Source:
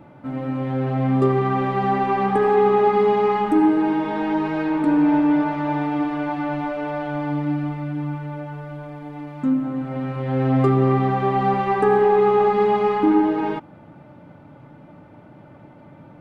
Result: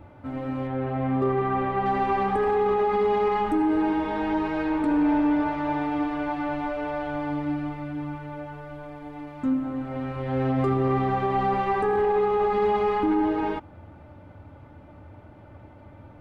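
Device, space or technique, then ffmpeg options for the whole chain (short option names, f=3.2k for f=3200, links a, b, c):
car stereo with a boomy subwoofer: -filter_complex "[0:a]lowshelf=f=110:t=q:w=3:g=9.5,alimiter=limit=-13.5dB:level=0:latency=1:release=12,asettb=1/sr,asplit=3[a][b][c];[a]atrim=end=0.674[d];[b]atrim=start=0.67:end=1.86,asetpts=PTS-STARTPTS,afade=t=in:d=0.004:c=qsin,afade=t=out:st=1.186:d=0.004:c=qsin,bass=f=250:g=-2,treble=f=4k:g=-14[e];[c]atrim=start=1.856[f];[d][e]acrossfade=d=0.004:c1=hsin:c2=qsin[g];[g][f]acrossfade=d=0.004:c1=qsin:c2=hsin,volume=-2.5dB"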